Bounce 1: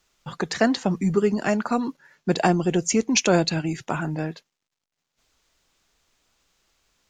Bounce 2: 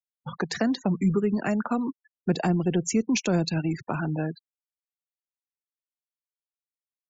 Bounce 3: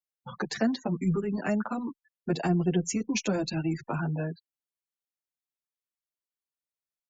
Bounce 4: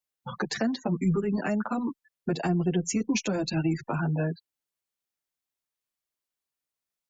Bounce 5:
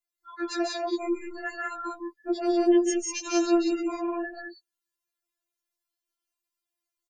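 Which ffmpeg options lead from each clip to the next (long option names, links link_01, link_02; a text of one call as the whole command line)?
ffmpeg -i in.wav -filter_complex "[0:a]afftfilt=real='re*gte(hypot(re,im),0.0251)':imag='im*gte(hypot(re,im),0.0251)':win_size=1024:overlap=0.75,acrossover=split=270[link_01][link_02];[link_02]acompressor=threshold=-27dB:ratio=5[link_03];[link_01][link_03]amix=inputs=2:normalize=0" out.wav
ffmpeg -i in.wav -filter_complex "[0:a]asplit=2[link_01][link_02];[link_02]adelay=7.7,afreqshift=0.68[link_03];[link_01][link_03]amix=inputs=2:normalize=1" out.wav
ffmpeg -i in.wav -af "alimiter=limit=-21.5dB:level=0:latency=1:release=397,volume=4.5dB" out.wav
ffmpeg -i in.wav -af "aecho=1:1:148.7|186.6:0.708|0.891,afftfilt=real='re*4*eq(mod(b,16),0)':imag='im*4*eq(mod(b,16),0)':win_size=2048:overlap=0.75" out.wav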